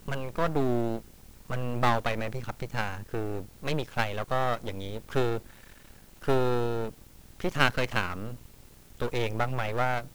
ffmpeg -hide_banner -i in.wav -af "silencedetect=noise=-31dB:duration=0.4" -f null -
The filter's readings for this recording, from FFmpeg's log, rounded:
silence_start: 0.98
silence_end: 1.50 | silence_duration: 0.52
silence_start: 5.38
silence_end: 6.24 | silence_duration: 0.86
silence_start: 6.89
silence_end: 7.40 | silence_duration: 0.51
silence_start: 8.34
silence_end: 9.00 | silence_duration: 0.66